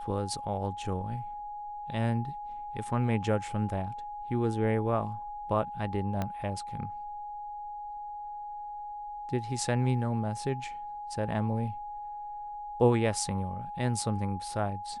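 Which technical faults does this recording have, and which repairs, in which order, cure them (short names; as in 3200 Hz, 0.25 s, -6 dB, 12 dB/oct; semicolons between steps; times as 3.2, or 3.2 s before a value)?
tone 830 Hz -37 dBFS
6.22 pop -18 dBFS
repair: de-click; notch 830 Hz, Q 30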